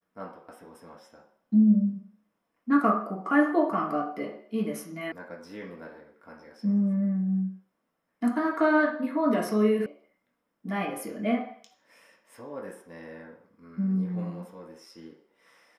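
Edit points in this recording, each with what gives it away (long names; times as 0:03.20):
0:05.12: cut off before it has died away
0:09.86: cut off before it has died away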